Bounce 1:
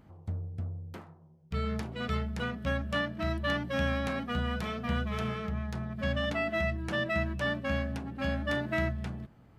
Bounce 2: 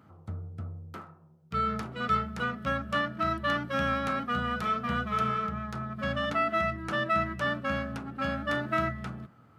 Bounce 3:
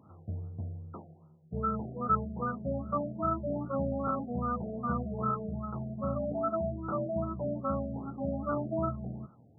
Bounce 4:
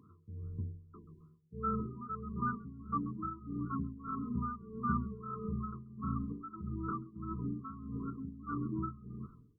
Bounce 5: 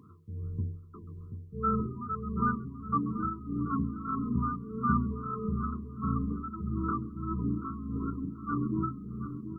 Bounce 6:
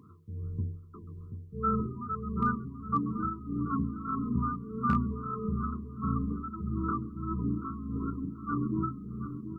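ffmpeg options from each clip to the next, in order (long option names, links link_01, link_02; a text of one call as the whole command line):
ffmpeg -i in.wav -af "highpass=frequency=87:width=0.5412,highpass=frequency=87:width=1.3066,equalizer=frequency=1300:width_type=o:width=0.3:gain=13.5,bandreject=frequency=178.7:width_type=h:width=4,bandreject=frequency=357.4:width_type=h:width=4,bandreject=frequency=536.1:width_type=h:width=4,bandreject=frequency=714.8:width_type=h:width=4,bandreject=frequency=893.5:width_type=h:width=4,bandreject=frequency=1072.2:width_type=h:width=4,bandreject=frequency=1250.9:width_type=h:width=4,bandreject=frequency=1429.6:width_type=h:width=4,bandreject=frequency=1608.3:width_type=h:width=4,bandreject=frequency=1787:width_type=h:width=4,bandreject=frequency=1965.7:width_type=h:width=4,bandreject=frequency=2144.4:width_type=h:width=4,bandreject=frequency=2323.1:width_type=h:width=4,bandreject=frequency=2501.8:width_type=h:width=4,bandreject=frequency=2680.5:width_type=h:width=4" out.wav
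ffmpeg -i in.wav -af "afftfilt=real='re*lt(b*sr/1024,750*pow(1500/750,0.5+0.5*sin(2*PI*2.5*pts/sr)))':imag='im*lt(b*sr/1024,750*pow(1500/750,0.5+0.5*sin(2*PI*2.5*pts/sr)))':win_size=1024:overlap=0.75" out.wav
ffmpeg -i in.wav -filter_complex "[0:a]asplit=4[link_01][link_02][link_03][link_04];[link_02]adelay=134,afreqshift=-48,volume=-20dB[link_05];[link_03]adelay=268,afreqshift=-96,volume=-28.6dB[link_06];[link_04]adelay=402,afreqshift=-144,volume=-37.3dB[link_07];[link_01][link_05][link_06][link_07]amix=inputs=4:normalize=0,afftfilt=real='re*(1-between(b*sr/4096,470,970))':imag='im*(1-between(b*sr/4096,470,970))':win_size=4096:overlap=0.75,tremolo=f=1.6:d=0.81" out.wav
ffmpeg -i in.wav -filter_complex "[0:a]asplit=2[link_01][link_02];[link_02]adelay=733,lowpass=frequency=800:poles=1,volume=-9dB,asplit=2[link_03][link_04];[link_04]adelay=733,lowpass=frequency=800:poles=1,volume=0.46,asplit=2[link_05][link_06];[link_06]adelay=733,lowpass=frequency=800:poles=1,volume=0.46,asplit=2[link_07][link_08];[link_08]adelay=733,lowpass=frequency=800:poles=1,volume=0.46,asplit=2[link_09][link_10];[link_10]adelay=733,lowpass=frequency=800:poles=1,volume=0.46[link_11];[link_01][link_03][link_05][link_07][link_09][link_11]amix=inputs=6:normalize=0,volume=6dB" out.wav
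ffmpeg -i in.wav -af "volume=17.5dB,asoftclip=hard,volume=-17.5dB" out.wav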